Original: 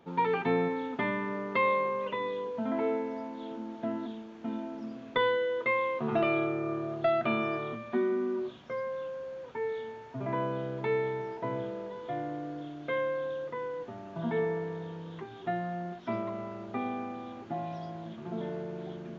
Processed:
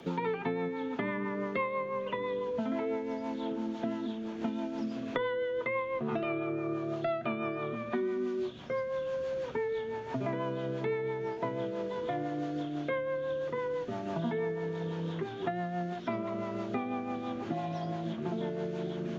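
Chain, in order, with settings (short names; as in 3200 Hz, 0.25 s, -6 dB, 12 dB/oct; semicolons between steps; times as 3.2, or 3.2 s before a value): rotary speaker horn 6 Hz; three-band squash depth 100%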